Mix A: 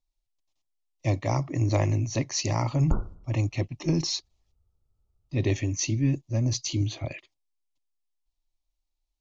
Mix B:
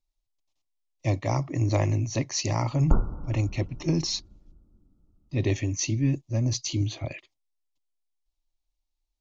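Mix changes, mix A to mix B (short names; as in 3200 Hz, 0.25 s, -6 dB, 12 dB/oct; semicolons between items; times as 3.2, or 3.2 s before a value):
background +3.5 dB; reverb: on, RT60 2.8 s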